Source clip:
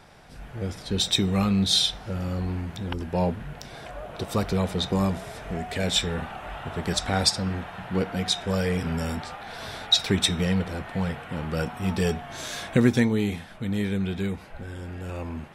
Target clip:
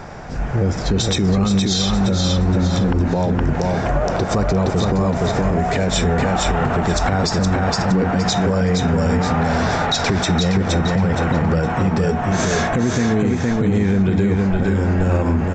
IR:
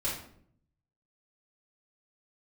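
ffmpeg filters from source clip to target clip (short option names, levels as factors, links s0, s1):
-filter_complex "[0:a]equalizer=f=3500:t=o:w=1.3:g=-12.5,acompressor=threshold=0.0316:ratio=6,asplit=2[s0][s1];[s1]aecho=0:1:467|934|1401|1868:0.631|0.196|0.0606|0.0188[s2];[s0][s2]amix=inputs=2:normalize=0,aresample=16000,aresample=44100,alimiter=level_in=22.4:limit=0.891:release=50:level=0:latency=1,volume=0.398"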